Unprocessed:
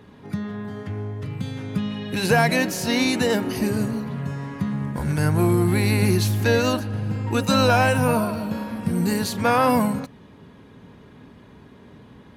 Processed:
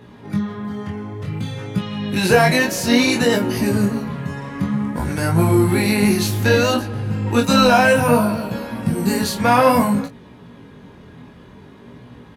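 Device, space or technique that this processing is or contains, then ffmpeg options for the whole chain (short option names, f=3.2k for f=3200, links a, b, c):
double-tracked vocal: -filter_complex "[0:a]asplit=2[a][b];[b]adelay=25,volume=-7.5dB[c];[a][c]amix=inputs=2:normalize=0,flanger=delay=16.5:depth=7.5:speed=0.58,volume=7dB"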